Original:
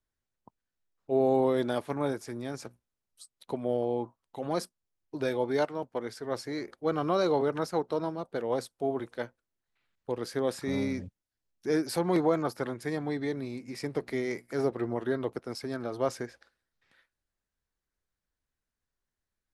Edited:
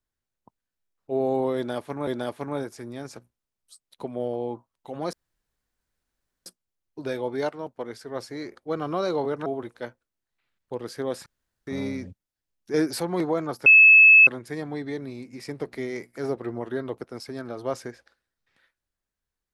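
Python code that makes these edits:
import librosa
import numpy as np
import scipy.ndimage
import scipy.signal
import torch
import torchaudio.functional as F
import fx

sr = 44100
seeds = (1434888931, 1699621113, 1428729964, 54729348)

y = fx.edit(x, sr, fx.repeat(start_s=1.56, length_s=0.51, count=2),
    fx.insert_room_tone(at_s=4.62, length_s=1.33),
    fx.cut(start_s=7.62, length_s=1.21),
    fx.insert_room_tone(at_s=10.63, length_s=0.41),
    fx.clip_gain(start_s=11.7, length_s=0.26, db=4.5),
    fx.insert_tone(at_s=12.62, length_s=0.61, hz=2600.0, db=-9.0), tone=tone)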